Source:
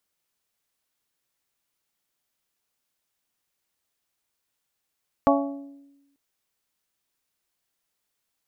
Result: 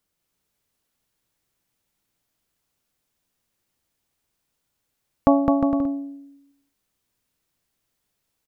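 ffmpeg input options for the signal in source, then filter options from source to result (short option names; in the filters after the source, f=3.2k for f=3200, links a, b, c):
-f lavfi -i "aevalsrc='0.126*pow(10,-3*t/1.07)*sin(2*PI*280*t)+0.119*pow(10,-3*t/0.659)*sin(2*PI*560*t)+0.112*pow(10,-3*t/0.58)*sin(2*PI*672*t)+0.106*pow(10,-3*t/0.496)*sin(2*PI*840*t)+0.1*pow(10,-3*t/0.405)*sin(2*PI*1120*t)':d=0.89:s=44100"
-af "lowshelf=f=360:g=10.5,aecho=1:1:210|357|459.9|531.9|582.4:0.631|0.398|0.251|0.158|0.1"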